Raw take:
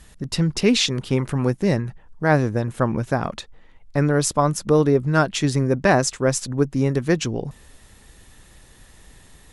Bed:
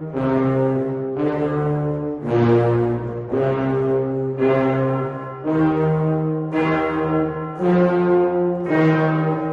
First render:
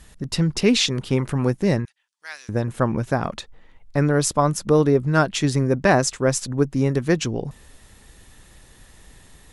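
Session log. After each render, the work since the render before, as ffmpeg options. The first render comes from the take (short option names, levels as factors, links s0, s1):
-filter_complex "[0:a]asettb=1/sr,asplit=3[s0][s1][s2];[s0]atrim=end=1.854[s3];[s1]atrim=start=1.85:end=2.49,asetpts=PTS-STARTPTS,afade=t=in:d=0.004:c=qsin,afade=t=out:st=0.636:d=0.004:c=qsin,asuperpass=centerf=5900:order=4:qfactor=0.72[s4];[s2]atrim=start=2.486[s5];[s3][s4]acrossfade=d=0.004:c1=hsin:c2=qsin[s6];[s6][s5]acrossfade=d=0.004:c1=qsin:c2=hsin"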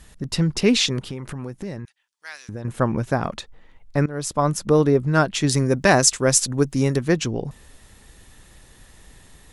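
-filter_complex "[0:a]asettb=1/sr,asplit=3[s0][s1][s2];[s0]atrim=end=0.994[s3];[s1]atrim=start=0.99:end=2.65,asetpts=PTS-STARTPTS,afade=t=in:d=0.004:c=qsin,afade=t=out:st=1.656:d=0.004:c=qsin,acompressor=threshold=0.0355:ratio=4:attack=3.2:release=140:knee=1:detection=peak[s4];[s2]atrim=start=2.646[s5];[s3][s4]acrossfade=d=0.004:c1=hsin:c2=qsin[s6];[s6][s5]acrossfade=d=0.004:c1=qsin:c2=hsin,asettb=1/sr,asplit=3[s7][s8][s9];[s7]atrim=end=5.494[s10];[s8]atrim=start=5.49:end=6.97,asetpts=PTS-STARTPTS,afade=t=in:d=0.004:c=qsin,afade=t=out:st=1.476:d=0.004:c=qsin,highshelf=f=3200:g=10.5[s11];[s9]atrim=start=6.966[s12];[s10][s11]acrossfade=d=0.004:c1=hsin:c2=qsin[s13];[s13][s12]acrossfade=d=0.004:c1=qsin:c2=hsin,asplit=2[s14][s15];[s14]atrim=end=4.06,asetpts=PTS-STARTPTS,afade=t=out:st=4.056:d=0.004:c=hsin:silence=0.105925[s16];[s15]atrim=start=4.06,asetpts=PTS-STARTPTS,afade=t=in:d=0.44:silence=0.105925[s17];[s16][s17]concat=n=2:v=0:a=1"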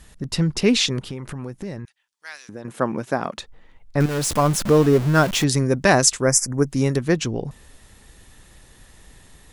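-filter_complex "[0:a]asettb=1/sr,asplit=3[s0][s1][s2];[s0]atrim=end=2.394[s3];[s1]atrim=start=2.39:end=3.38,asetpts=PTS-STARTPTS,afade=t=in:d=0.004:c=qsin,afade=t=out:st=0.986:d=0.004:c=qsin,highpass=210[s4];[s2]atrim=start=3.376[s5];[s3][s4]acrossfade=d=0.004:c1=hsin:c2=qsin[s6];[s6][s5]acrossfade=d=0.004:c1=qsin:c2=hsin,asettb=1/sr,asplit=3[s7][s8][s9];[s7]atrim=end=4.004[s10];[s8]atrim=start=4:end=5.44,asetpts=PTS-STARTPTS,afade=t=in:d=0.004:c=qsin,afade=t=out:st=1.436:d=0.004:c=qsin,aeval=exprs='val(0)+0.5*0.0708*sgn(val(0))':c=same[s11];[s9]atrim=start=5.436[s12];[s10][s11]acrossfade=d=0.004:c1=hsin:c2=qsin[s13];[s13][s12]acrossfade=d=0.004:c1=qsin:c2=hsin,asettb=1/sr,asplit=3[s14][s15][s16];[s14]atrim=end=6.224[s17];[s15]atrim=start=6.22:end=6.67,asetpts=PTS-STARTPTS,afade=t=in:d=0.004:c=qsin,afade=t=out:st=0.446:d=0.004:c=qsin,asuperstop=centerf=3400:order=12:qfactor=1.3[s18];[s16]atrim=start=6.666[s19];[s17][s18]acrossfade=d=0.004:c1=hsin:c2=qsin[s20];[s20][s19]acrossfade=d=0.004:c1=qsin:c2=hsin"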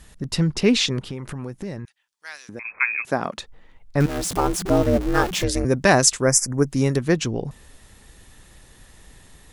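-filter_complex "[0:a]asettb=1/sr,asplit=3[s0][s1][s2];[s0]atrim=end=0.504[s3];[s1]atrim=start=0.5:end=1.14,asetpts=PTS-STARTPTS,afade=t=in:d=0.004:c=qsin,afade=t=out:st=0.636:d=0.004:c=qsin,highshelf=f=7900:g=-6[s4];[s2]atrim=start=1.136[s5];[s3][s4]acrossfade=d=0.004:c1=hsin:c2=qsin[s6];[s6][s5]acrossfade=d=0.004:c1=qsin:c2=hsin,asettb=1/sr,asplit=3[s7][s8][s9];[s7]atrim=end=2.594[s10];[s8]atrim=start=2.59:end=3.05,asetpts=PTS-STARTPTS,afade=t=in:d=0.004:c=qsin,afade=t=out:st=0.456:d=0.004:c=qsin,lowpass=f=2300:t=q:w=0.5098,lowpass=f=2300:t=q:w=0.6013,lowpass=f=2300:t=q:w=0.9,lowpass=f=2300:t=q:w=2.563,afreqshift=-2700[s11];[s9]atrim=start=3.046[s12];[s10][s11]acrossfade=d=0.004:c1=hsin:c2=qsin[s13];[s13][s12]acrossfade=d=0.004:c1=qsin:c2=hsin,asettb=1/sr,asplit=3[s14][s15][s16];[s14]atrim=end=4.064[s17];[s15]atrim=start=4.06:end=5.65,asetpts=PTS-STARTPTS,afade=t=in:d=0.004:c=qsin,afade=t=out:st=1.586:d=0.004:c=qsin,aeval=exprs='val(0)*sin(2*PI*180*n/s)':c=same[s18];[s16]atrim=start=5.646[s19];[s17][s18]acrossfade=d=0.004:c1=hsin:c2=qsin[s20];[s20][s19]acrossfade=d=0.004:c1=qsin:c2=hsin"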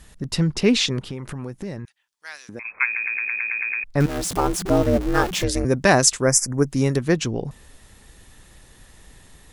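-filter_complex "[0:a]asplit=10[s0][s1][s2][s3][s4][s5][s6][s7][s8][s9];[s0]atrim=end=2.962[s10];[s1]atrim=start=2.848:end=2.962[s11];[s2]atrim=start=2.848:end=2.962[s12];[s3]atrim=start=2.848:end=2.962[s13];[s4]atrim=start=2.848:end=2.962[s14];[s5]atrim=start=2.848:end=2.962[s15];[s6]atrim=start=2.848:end=2.962[s16];[s7]atrim=start=2.848:end=2.962[s17];[s8]atrim=start=2.848:end=2.962[s18];[s9]atrim=start=3.838[s19];[s10][s11]acrossfade=d=0.004:c1=hsin:c2=hsin[s20];[s20][s12]acrossfade=d=0.004:c1=hsin:c2=hsin[s21];[s21][s13]acrossfade=d=0.004:c1=hsin:c2=hsin[s22];[s22][s14]acrossfade=d=0.004:c1=hsin:c2=hsin[s23];[s23][s15]acrossfade=d=0.004:c1=hsin:c2=hsin[s24];[s24][s16]acrossfade=d=0.004:c1=hsin:c2=hsin[s25];[s25][s17]acrossfade=d=0.004:c1=hsin:c2=hsin[s26];[s26][s18]acrossfade=d=0.004:c1=hsin:c2=hsin[s27];[s27][s19]acrossfade=d=0.004:c1=hsin:c2=hsin"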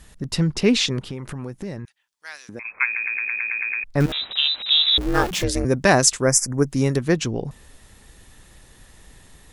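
-filter_complex "[0:a]asettb=1/sr,asplit=3[s0][s1][s2];[s0]atrim=end=4.124[s3];[s1]atrim=start=4.12:end=4.98,asetpts=PTS-STARTPTS,afade=t=in:d=0.004:c=qsin,afade=t=out:st=0.856:d=0.004:c=qsin,lowpass=f=3400:t=q:w=0.5098,lowpass=f=3400:t=q:w=0.6013,lowpass=f=3400:t=q:w=0.9,lowpass=f=3400:t=q:w=2.563,afreqshift=-4000[s4];[s2]atrim=start=4.976[s5];[s3][s4]acrossfade=d=0.004:c1=hsin:c2=qsin[s6];[s6][s5]acrossfade=d=0.004:c1=qsin:c2=hsin"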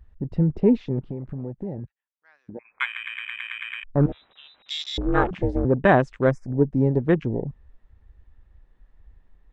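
-af "lowpass=1700,afwtdn=0.0316"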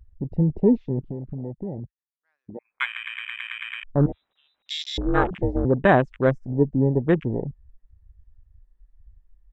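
-af "afwtdn=0.0224"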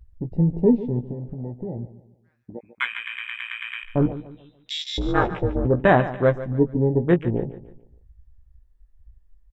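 -filter_complex "[0:a]asplit=2[s0][s1];[s1]adelay=17,volume=0.398[s2];[s0][s2]amix=inputs=2:normalize=0,aecho=1:1:145|290|435|580:0.188|0.0716|0.0272|0.0103"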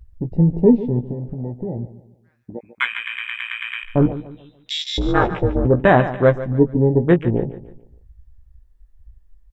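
-af "volume=1.68,alimiter=limit=0.794:level=0:latency=1"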